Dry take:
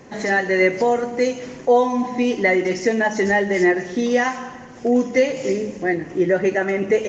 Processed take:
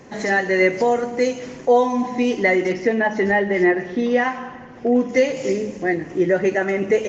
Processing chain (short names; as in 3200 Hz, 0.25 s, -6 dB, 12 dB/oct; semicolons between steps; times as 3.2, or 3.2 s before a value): 2.72–5.09 LPF 3200 Hz 12 dB/oct